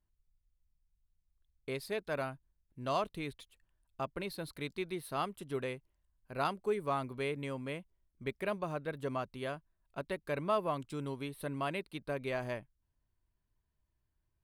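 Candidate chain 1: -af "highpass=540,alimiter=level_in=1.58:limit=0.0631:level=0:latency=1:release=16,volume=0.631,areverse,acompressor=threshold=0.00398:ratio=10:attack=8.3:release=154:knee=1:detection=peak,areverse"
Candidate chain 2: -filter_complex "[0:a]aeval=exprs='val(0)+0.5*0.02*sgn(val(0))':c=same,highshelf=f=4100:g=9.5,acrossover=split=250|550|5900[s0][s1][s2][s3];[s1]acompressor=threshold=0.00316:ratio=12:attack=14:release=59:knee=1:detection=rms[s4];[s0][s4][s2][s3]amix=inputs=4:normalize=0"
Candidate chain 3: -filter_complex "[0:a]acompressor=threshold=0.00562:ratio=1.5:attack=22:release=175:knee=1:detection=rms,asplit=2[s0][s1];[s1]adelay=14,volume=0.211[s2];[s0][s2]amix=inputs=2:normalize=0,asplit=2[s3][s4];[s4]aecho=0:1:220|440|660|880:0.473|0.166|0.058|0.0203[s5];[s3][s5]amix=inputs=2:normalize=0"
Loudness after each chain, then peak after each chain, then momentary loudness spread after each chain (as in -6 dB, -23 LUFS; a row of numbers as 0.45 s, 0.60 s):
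-53.0 LUFS, -35.0 LUFS, -42.0 LUFS; -34.5 dBFS, -17.0 dBFS, -24.5 dBFS; 6 LU, 10 LU, 11 LU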